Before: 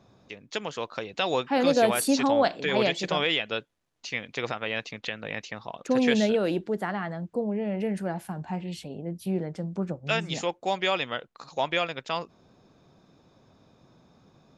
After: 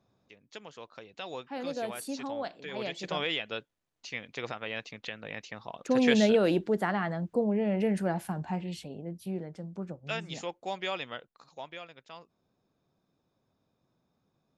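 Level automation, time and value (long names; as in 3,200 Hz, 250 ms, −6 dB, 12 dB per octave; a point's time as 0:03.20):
0:02.74 −13.5 dB
0:03.15 −6 dB
0:05.40 −6 dB
0:06.34 +1 dB
0:08.28 +1 dB
0:09.48 −8 dB
0:11.14 −8 dB
0:11.78 −17.5 dB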